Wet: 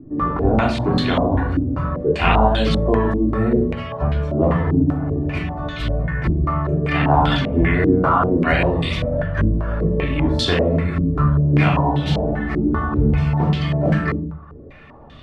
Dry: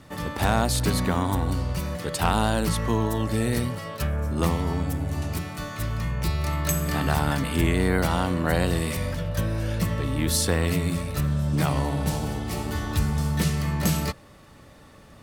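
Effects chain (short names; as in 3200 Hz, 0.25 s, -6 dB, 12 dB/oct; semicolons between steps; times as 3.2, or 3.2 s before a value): reverb removal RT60 0.75 s; shoebox room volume 870 m³, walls furnished, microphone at 3.2 m; stepped low-pass 5.1 Hz 310–3400 Hz; gain +1.5 dB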